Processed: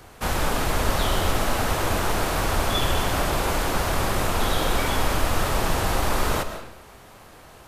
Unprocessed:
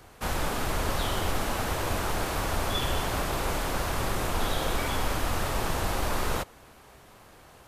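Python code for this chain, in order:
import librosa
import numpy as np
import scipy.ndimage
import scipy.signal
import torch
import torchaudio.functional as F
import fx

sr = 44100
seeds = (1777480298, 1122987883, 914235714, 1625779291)

y = fx.rev_freeverb(x, sr, rt60_s=0.86, hf_ratio=0.8, predelay_ms=95, drr_db=9.0)
y = y * librosa.db_to_amplitude(5.0)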